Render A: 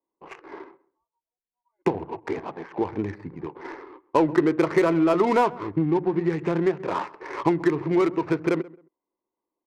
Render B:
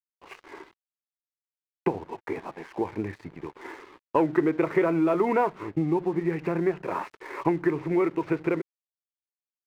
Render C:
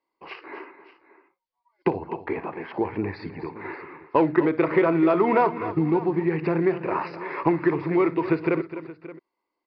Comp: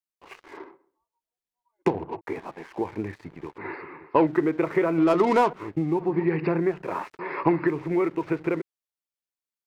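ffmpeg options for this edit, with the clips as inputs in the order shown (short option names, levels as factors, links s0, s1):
-filter_complex "[0:a]asplit=2[s0][s1];[2:a]asplit=3[s2][s3][s4];[1:a]asplit=6[s5][s6][s7][s8][s9][s10];[s5]atrim=end=0.572[s11];[s0]atrim=start=0.568:end=2.212[s12];[s6]atrim=start=2.208:end=3.582[s13];[s2]atrim=start=3.578:end=4.272[s14];[s7]atrim=start=4.268:end=4.982[s15];[s1]atrim=start=4.978:end=5.532[s16];[s8]atrim=start=5.528:end=6.19[s17];[s3]atrim=start=5.95:end=6.72[s18];[s9]atrim=start=6.48:end=7.192[s19];[s4]atrim=start=7.188:end=7.672[s20];[s10]atrim=start=7.668[s21];[s11][s12]acrossfade=d=0.004:c1=hsin:c2=hsin[s22];[s22][s13]acrossfade=d=0.004:c1=hsin:c2=hsin[s23];[s23][s14]acrossfade=d=0.004:c1=hsin:c2=hsin[s24];[s24][s15]acrossfade=d=0.004:c1=hsin:c2=hsin[s25];[s25][s16]acrossfade=d=0.004:c1=hsin:c2=hsin[s26];[s26][s17]acrossfade=d=0.004:c1=hsin:c2=hsin[s27];[s27][s18]acrossfade=d=0.24:c1=tri:c2=tri[s28];[s28][s19]acrossfade=d=0.24:c1=tri:c2=tri[s29];[s29][s20]acrossfade=d=0.004:c1=hsin:c2=hsin[s30];[s30][s21]acrossfade=d=0.004:c1=hsin:c2=hsin"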